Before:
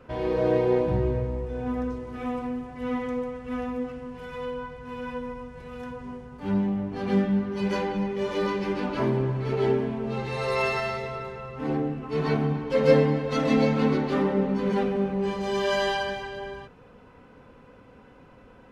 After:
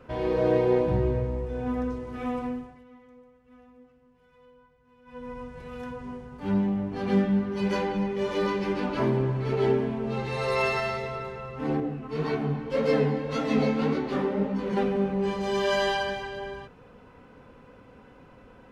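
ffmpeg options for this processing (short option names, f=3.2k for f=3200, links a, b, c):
-filter_complex "[0:a]asettb=1/sr,asplit=3[a][b][c];[a]atrim=end=11.804[d];[b]atrim=start=11.8:end=14.77,asetpts=PTS-STARTPTS,afade=t=in:d=0.004:c=qsin,afade=t=out:st=2.966:d=0.004:c=qsin,flanger=delay=16:depth=7.2:speed=1.8[e];[c]atrim=start=14.766[f];[d][e]acrossfade=d=0.004:c1=hsin:c2=qsin[g];[g][f]acrossfade=d=0.004:c1=qsin:c2=hsin,asplit=3[h][i][j];[h]atrim=end=2.84,asetpts=PTS-STARTPTS,afade=t=out:st=2.48:d=0.36:silence=0.0707946[k];[i]atrim=start=2.84:end=5.05,asetpts=PTS-STARTPTS,volume=-23dB[l];[j]atrim=start=5.05,asetpts=PTS-STARTPTS,afade=t=in:d=0.36:silence=0.0707946[m];[k][l][m]concat=n=3:v=0:a=1"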